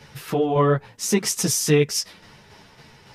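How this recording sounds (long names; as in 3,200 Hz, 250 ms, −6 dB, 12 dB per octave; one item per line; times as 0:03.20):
tremolo saw down 3.6 Hz, depth 45%
a shimmering, thickened sound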